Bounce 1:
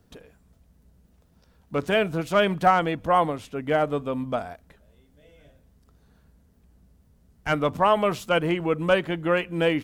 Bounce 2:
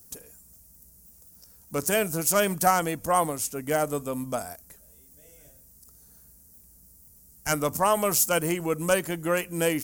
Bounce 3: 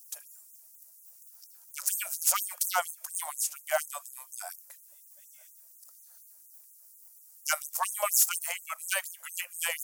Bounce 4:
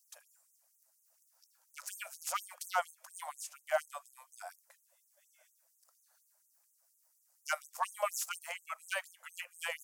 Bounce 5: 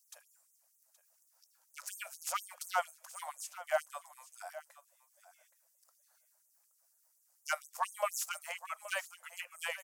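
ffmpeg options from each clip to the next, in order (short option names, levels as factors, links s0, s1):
-af "highshelf=f=9100:g=5.5,aexciter=amount=7.3:drive=8.6:freq=5200,volume=0.708"
-af "aeval=exprs='0.224*(abs(mod(val(0)/0.224+3,4)-2)-1)':c=same,afftfilt=real='re*gte(b*sr/1024,510*pow(6300/510,0.5+0.5*sin(2*PI*4.2*pts/sr)))':imag='im*gte(b*sr/1024,510*pow(6300/510,0.5+0.5*sin(2*PI*4.2*pts/sr)))':win_size=1024:overlap=0.75"
-af "aemphasis=mode=reproduction:type=75kf,volume=0.75"
-af "aecho=1:1:822:0.168"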